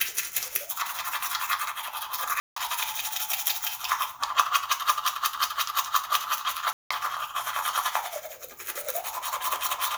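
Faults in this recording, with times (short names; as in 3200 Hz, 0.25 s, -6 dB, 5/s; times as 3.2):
2.4–2.56 gap 0.164 s
6.73–6.91 gap 0.175 s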